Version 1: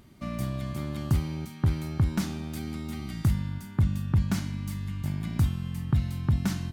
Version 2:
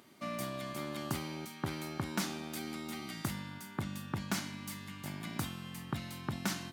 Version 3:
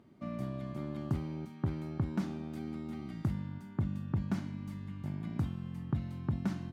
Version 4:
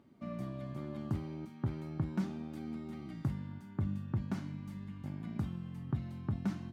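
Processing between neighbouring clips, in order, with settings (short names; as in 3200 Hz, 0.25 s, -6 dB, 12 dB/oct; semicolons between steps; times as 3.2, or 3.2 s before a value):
Bessel high-pass 400 Hz, order 2; gain +1 dB
tilt -4.5 dB/oct; gain -6.5 dB
flange 0.39 Hz, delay 3.4 ms, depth 7 ms, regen +68%; gain +2 dB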